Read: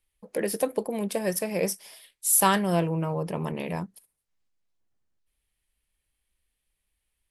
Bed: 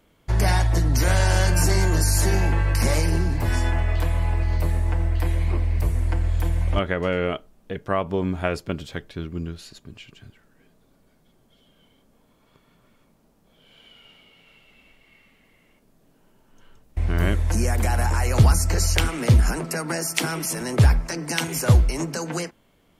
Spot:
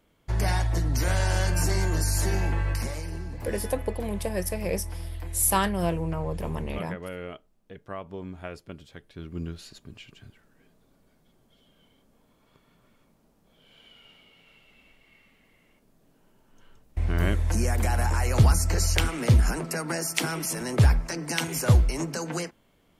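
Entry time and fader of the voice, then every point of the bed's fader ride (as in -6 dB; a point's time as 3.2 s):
3.10 s, -2.5 dB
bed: 2.72 s -5.5 dB
2.93 s -13.5 dB
9.01 s -13.5 dB
9.42 s -3 dB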